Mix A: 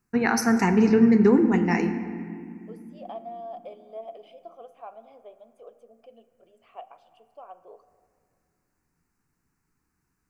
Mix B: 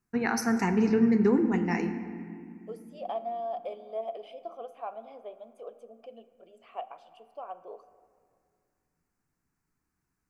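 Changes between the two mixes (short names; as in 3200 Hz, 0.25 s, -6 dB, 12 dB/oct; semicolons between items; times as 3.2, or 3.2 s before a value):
first voice -5.5 dB; second voice +4.0 dB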